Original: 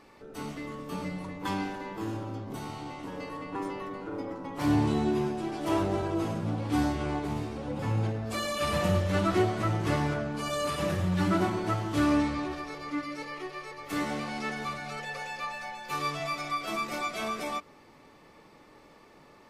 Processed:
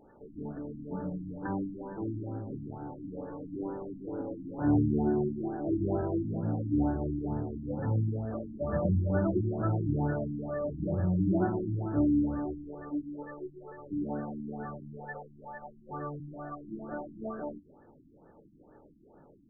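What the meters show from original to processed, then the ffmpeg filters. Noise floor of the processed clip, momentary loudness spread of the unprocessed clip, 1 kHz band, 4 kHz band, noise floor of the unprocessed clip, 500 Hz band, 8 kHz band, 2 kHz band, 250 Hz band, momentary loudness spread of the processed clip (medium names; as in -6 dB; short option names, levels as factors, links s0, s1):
-59 dBFS, 12 LU, -8.5 dB, under -40 dB, -56 dBFS, -2.5 dB, under -35 dB, -13.0 dB, -0.5 dB, 15 LU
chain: -af "equalizer=f=1100:w=4.1:g=-13,afftfilt=real='re*lt(b*sr/1024,330*pow(1800/330,0.5+0.5*sin(2*PI*2.2*pts/sr)))':imag='im*lt(b*sr/1024,330*pow(1800/330,0.5+0.5*sin(2*PI*2.2*pts/sr)))':win_size=1024:overlap=0.75"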